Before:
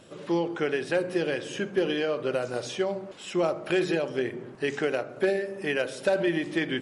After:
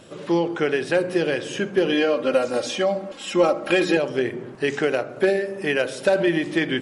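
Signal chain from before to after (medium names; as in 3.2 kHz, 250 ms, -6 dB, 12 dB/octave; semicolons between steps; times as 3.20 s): 1.92–3.97 s: comb 3.7 ms, depth 79%; trim +5.5 dB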